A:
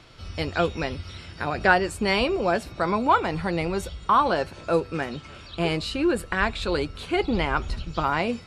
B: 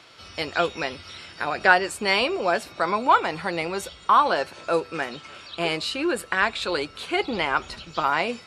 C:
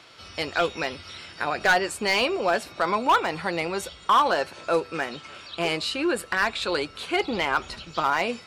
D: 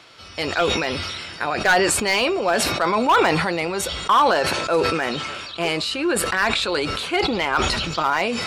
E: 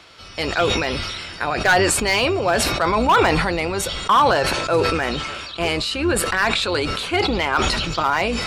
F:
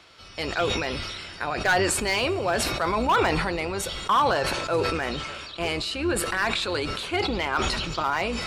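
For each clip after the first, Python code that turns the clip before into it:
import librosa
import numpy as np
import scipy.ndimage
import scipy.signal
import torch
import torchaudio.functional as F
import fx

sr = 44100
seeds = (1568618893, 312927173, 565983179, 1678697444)

y1 = fx.highpass(x, sr, hz=620.0, slope=6)
y1 = y1 * 10.0 ** (3.5 / 20.0)
y2 = np.clip(y1, -10.0 ** (-14.0 / 20.0), 10.0 ** (-14.0 / 20.0))
y3 = fx.sustainer(y2, sr, db_per_s=27.0)
y3 = y3 * 10.0 ** (2.5 / 20.0)
y4 = fx.octave_divider(y3, sr, octaves=2, level_db=-3.0)
y4 = y4 * 10.0 ** (1.0 / 20.0)
y5 = fx.rev_fdn(y4, sr, rt60_s=2.4, lf_ratio=1.0, hf_ratio=0.8, size_ms=16.0, drr_db=18.5)
y5 = y5 * 10.0 ** (-6.0 / 20.0)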